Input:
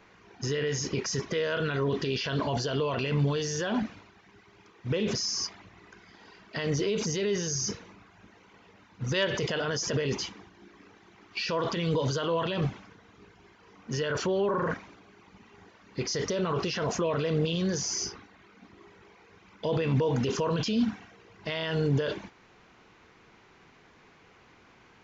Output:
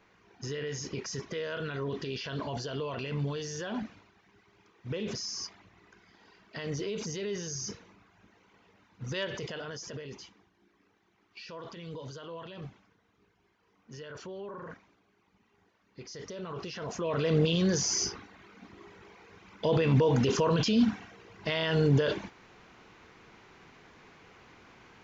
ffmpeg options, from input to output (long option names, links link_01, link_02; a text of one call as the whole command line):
ffmpeg -i in.wav -af "volume=10dB,afade=type=out:start_time=9.14:duration=0.98:silence=0.398107,afade=type=in:start_time=16.05:duration=0.92:silence=0.446684,afade=type=in:start_time=16.97:duration=0.37:silence=0.334965" out.wav